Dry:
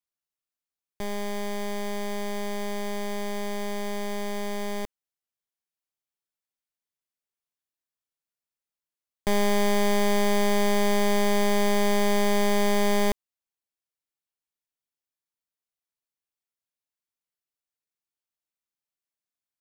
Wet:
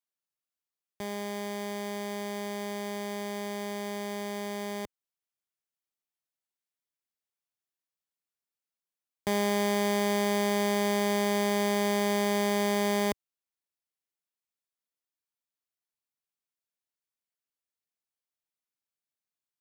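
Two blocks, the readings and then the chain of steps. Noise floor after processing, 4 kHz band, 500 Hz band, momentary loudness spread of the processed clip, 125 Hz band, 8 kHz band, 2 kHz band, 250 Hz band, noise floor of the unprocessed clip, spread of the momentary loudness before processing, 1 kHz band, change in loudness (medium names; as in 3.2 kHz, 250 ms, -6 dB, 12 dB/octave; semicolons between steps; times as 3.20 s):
under -85 dBFS, -3.0 dB, -3.0 dB, 9 LU, no reading, -3.0 dB, -3.0 dB, -3.0 dB, under -85 dBFS, 9 LU, -3.0 dB, -3.0 dB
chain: high-pass 91 Hz; trim -3 dB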